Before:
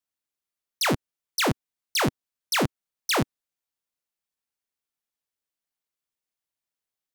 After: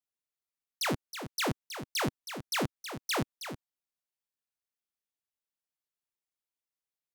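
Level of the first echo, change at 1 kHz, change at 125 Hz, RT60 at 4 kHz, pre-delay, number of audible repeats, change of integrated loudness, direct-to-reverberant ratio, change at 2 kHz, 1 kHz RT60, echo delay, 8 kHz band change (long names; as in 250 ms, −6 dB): −10.0 dB, −7.0 dB, −7.0 dB, no reverb audible, no reverb audible, 1, −7.5 dB, no reverb audible, −7.0 dB, no reverb audible, 320 ms, −7.0 dB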